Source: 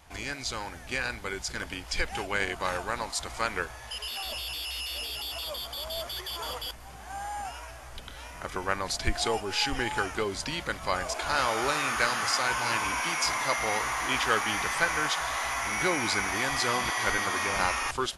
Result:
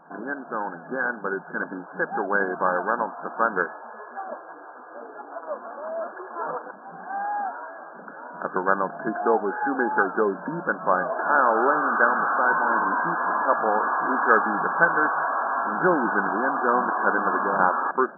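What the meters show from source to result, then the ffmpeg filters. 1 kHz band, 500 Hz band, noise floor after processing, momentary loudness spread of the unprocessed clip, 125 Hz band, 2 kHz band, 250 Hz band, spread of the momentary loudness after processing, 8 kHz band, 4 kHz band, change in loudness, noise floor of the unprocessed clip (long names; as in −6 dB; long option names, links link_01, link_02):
+8.5 dB, +8.5 dB, −43 dBFS, 10 LU, −1.5 dB, +5.0 dB, +8.5 dB, 18 LU, below −40 dB, below −40 dB, +5.5 dB, −44 dBFS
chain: -af "afftfilt=real='re*between(b*sr/4096,160,1700)':imag='im*between(b*sr/4096,160,1700)':win_size=4096:overlap=0.75,volume=8.5dB"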